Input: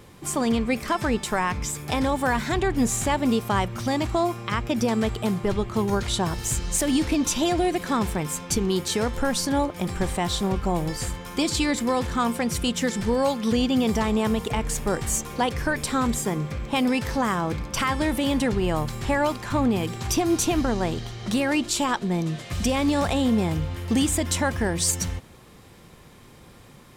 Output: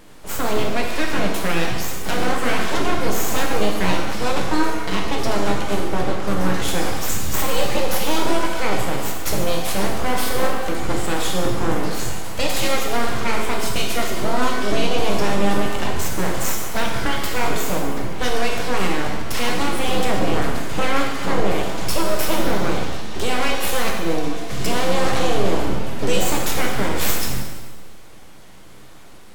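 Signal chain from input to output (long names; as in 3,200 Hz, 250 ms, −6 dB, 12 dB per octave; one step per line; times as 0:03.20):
full-wave rectification
wrong playback speed 48 kHz file played as 44.1 kHz
reverb with rising layers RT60 1.1 s, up +7 semitones, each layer −8 dB, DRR 0 dB
level +2.5 dB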